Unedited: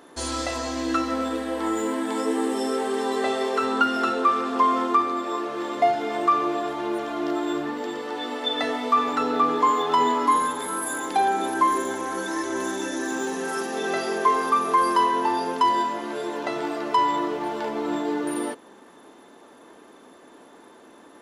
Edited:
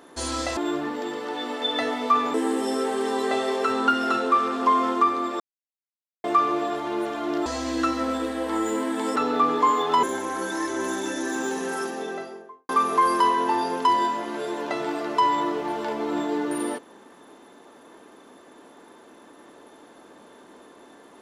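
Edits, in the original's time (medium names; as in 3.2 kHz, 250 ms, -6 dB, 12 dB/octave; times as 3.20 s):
0.57–2.27 s: swap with 7.39–9.16 s
5.33–6.17 s: mute
10.03–11.79 s: delete
13.40–14.45 s: studio fade out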